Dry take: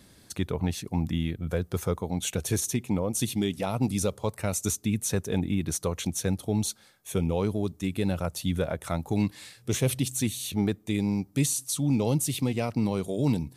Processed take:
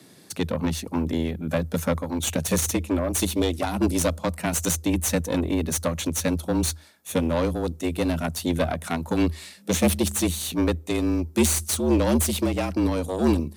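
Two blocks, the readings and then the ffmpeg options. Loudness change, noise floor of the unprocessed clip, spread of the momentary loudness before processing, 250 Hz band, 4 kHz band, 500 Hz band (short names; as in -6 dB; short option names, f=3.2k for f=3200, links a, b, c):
+4.0 dB, -57 dBFS, 4 LU, +4.5 dB, +5.0 dB, +5.0 dB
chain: -af "aeval=exprs='0.251*(cos(1*acos(clip(val(0)/0.251,-1,1)))-cos(1*PI/2))+0.0398*(cos(6*acos(clip(val(0)/0.251,-1,1)))-cos(6*PI/2))':c=same,afreqshift=79,volume=4dB"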